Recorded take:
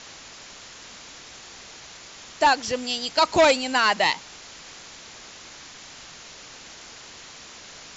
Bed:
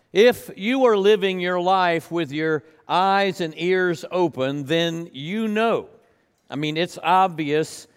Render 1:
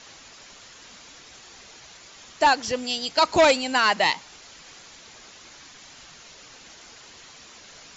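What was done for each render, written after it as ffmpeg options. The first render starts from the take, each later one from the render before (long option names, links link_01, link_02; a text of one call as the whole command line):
ffmpeg -i in.wav -af "afftdn=noise_reduction=6:noise_floor=-44" out.wav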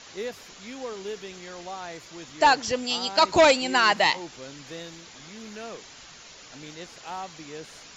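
ffmpeg -i in.wav -i bed.wav -filter_complex "[1:a]volume=-19dB[link_01];[0:a][link_01]amix=inputs=2:normalize=0" out.wav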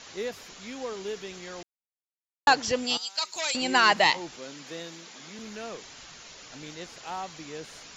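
ffmpeg -i in.wav -filter_complex "[0:a]asettb=1/sr,asplit=3[link_01][link_02][link_03];[link_01]atrim=end=2.974[link_04];[link_02]atrim=start=2.97:end=3.55,asetpts=PTS-STARTPTS,afade=type=in:duration=0.004:curve=qsin,afade=type=out:start_time=0.576:duration=0.004:curve=qsin,aderivative[link_05];[link_03]atrim=start=3.546[link_06];[link_04][link_05]acrossfade=duration=0.004:curve1=hsin:curve2=qsin[link_07];[link_07][link_06]acrossfade=duration=0.004:curve1=qsin:curve2=hsin,asettb=1/sr,asplit=3[link_08][link_09][link_10];[link_08]atrim=end=4.364[link_11];[link_09]atrim=start=4.36:end=5.39,asetpts=PTS-STARTPTS,afade=type=in:duration=0.004:curve=qsin,afade=type=out:start_time=1.026:duration=0.004:curve=qsin,highpass=frequency=160:width=0.5412,highpass=frequency=160:width=1.3066[link_12];[link_10]atrim=start=5.386[link_13];[link_11][link_12]acrossfade=duration=0.004:curve1=hsin:curve2=qsin[link_14];[link_14][link_13]acrossfade=duration=0.004:curve1=qsin:curve2=hsin,asplit=3[link_15][link_16][link_17];[link_15]atrim=end=1.63,asetpts=PTS-STARTPTS,afade=type=out:start_time=1.626:duration=0.004:curve=hsin[link_18];[link_16]atrim=start=1.63:end=2.47,asetpts=PTS-STARTPTS,volume=0[link_19];[link_17]atrim=start=2.47,asetpts=PTS-STARTPTS,afade=type=in:duration=0.004:curve=hsin[link_20];[link_18][link_19][link_20]concat=n=3:v=0:a=1" out.wav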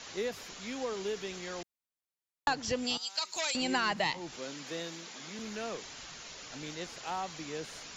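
ffmpeg -i in.wav -filter_complex "[0:a]acrossover=split=220[link_01][link_02];[link_02]acompressor=threshold=-31dB:ratio=3[link_03];[link_01][link_03]amix=inputs=2:normalize=0" out.wav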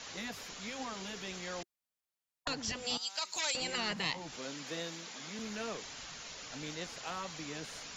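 ffmpeg -i in.wav -af "afftfilt=real='re*lt(hypot(re,im),0.112)':imag='im*lt(hypot(re,im),0.112)':win_size=1024:overlap=0.75,equalizer=frequency=360:width_type=o:width=0.21:gain=-5.5" out.wav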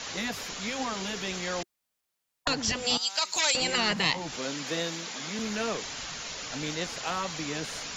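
ffmpeg -i in.wav -af "volume=9dB" out.wav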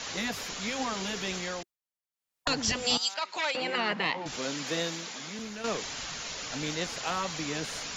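ffmpeg -i in.wav -filter_complex "[0:a]asettb=1/sr,asplit=3[link_01][link_02][link_03];[link_01]atrim=end=3.144[link_04];[link_02]atrim=start=3.14:end=4.26,asetpts=PTS-STARTPTS,afade=type=in:duration=0.004:curve=qsin,afade=type=out:start_time=1.116:duration=0.004:curve=qsin,highpass=240,lowpass=2500[link_05];[link_03]atrim=start=4.256[link_06];[link_04][link_05]acrossfade=duration=0.004:curve1=hsin:curve2=qsin[link_07];[link_07][link_06]acrossfade=duration=0.004:curve1=qsin:curve2=hsin,asplit=4[link_08][link_09][link_10][link_11];[link_08]atrim=end=1.78,asetpts=PTS-STARTPTS,afade=type=out:start_time=1.36:duration=0.42:silence=0.158489[link_12];[link_09]atrim=start=1.78:end=2.12,asetpts=PTS-STARTPTS,volume=-16dB[link_13];[link_10]atrim=start=2.12:end=5.64,asetpts=PTS-STARTPTS,afade=type=in:duration=0.42:silence=0.158489,afade=type=out:start_time=2.72:duration=0.8:silence=0.316228[link_14];[link_11]atrim=start=5.64,asetpts=PTS-STARTPTS,afade=type=in:duration=0.004:curve=hsin:silence=0.316228[link_15];[link_12][link_13][link_14][link_15]concat=n=4:v=0:a=1" out.wav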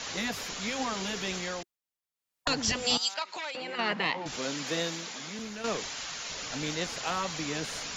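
ffmpeg -i in.wav -filter_complex "[0:a]asettb=1/sr,asplit=3[link_01][link_02][link_03];[link_01]atrim=end=3.224[link_04];[link_02]atrim=start=3.22:end=3.79,asetpts=PTS-STARTPTS,afade=type=in:duration=0.004:curve=qsin,afade=type=out:start_time=0.566:duration=0.004:curve=qsin,acompressor=threshold=-35dB:ratio=3:attack=3.2:release=140:knee=1:detection=peak[link_05];[link_03]atrim=start=3.786[link_06];[link_04][link_05]acrossfade=duration=0.004:curve1=hsin:curve2=qsin[link_07];[link_07][link_06]acrossfade=duration=0.004:curve1=qsin:curve2=hsin,asettb=1/sr,asplit=3[link_08][link_09][link_10];[link_08]atrim=end=5.884[link_11];[link_09]atrim=start=5.88:end=6.3,asetpts=PTS-STARTPTS,afade=type=in:duration=0.004:curve=qsin,afade=type=out:start_time=0.416:duration=0.004:curve=qsin,lowshelf=frequency=350:gain=-8[link_12];[link_10]atrim=start=6.296[link_13];[link_11][link_12]acrossfade=duration=0.004:curve1=hsin:curve2=qsin[link_14];[link_14][link_13]acrossfade=duration=0.004:curve1=qsin:curve2=hsin" out.wav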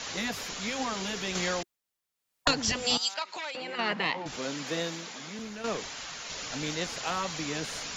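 ffmpeg -i in.wav -filter_complex "[0:a]asettb=1/sr,asplit=3[link_01][link_02][link_03];[link_01]atrim=end=1.354[link_04];[link_02]atrim=start=1.35:end=2.51,asetpts=PTS-STARTPTS,afade=type=in:duration=0.004:curve=qsin,afade=type=out:start_time=1.156:duration=0.004:curve=qsin,acontrast=30[link_05];[link_03]atrim=start=2.506[link_06];[link_04][link_05]acrossfade=duration=0.004:curve1=hsin:curve2=qsin[link_07];[link_07][link_06]acrossfade=duration=0.004:curve1=qsin:curve2=hsin,asettb=1/sr,asplit=3[link_08][link_09][link_10];[link_08]atrim=end=4.224[link_11];[link_09]atrim=start=4.22:end=6.3,asetpts=PTS-STARTPTS,afade=type=in:duration=0.004:curve=qsin,afade=type=out:start_time=2.076:duration=0.004:curve=qsin,equalizer=frequency=7100:width_type=o:width=3:gain=-3[link_12];[link_10]atrim=start=6.296[link_13];[link_11][link_12]acrossfade=duration=0.004:curve1=hsin:curve2=qsin[link_14];[link_14][link_13]acrossfade=duration=0.004:curve1=qsin:curve2=hsin" out.wav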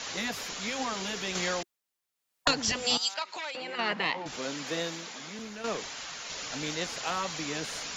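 ffmpeg -i in.wav -af "lowshelf=frequency=190:gain=-5" out.wav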